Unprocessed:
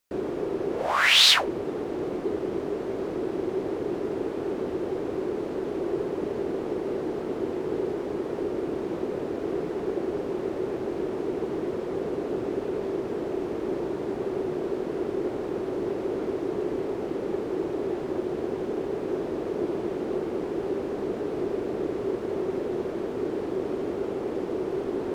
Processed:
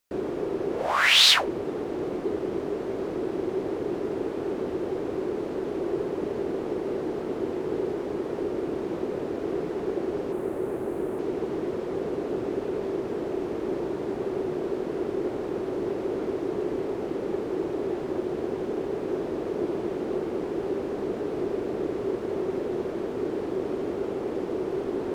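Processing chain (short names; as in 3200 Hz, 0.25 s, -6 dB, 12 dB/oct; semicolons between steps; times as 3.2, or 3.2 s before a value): 10.32–11.19 EQ curve 1400 Hz 0 dB, 5500 Hz -8 dB, 9400 Hz +8 dB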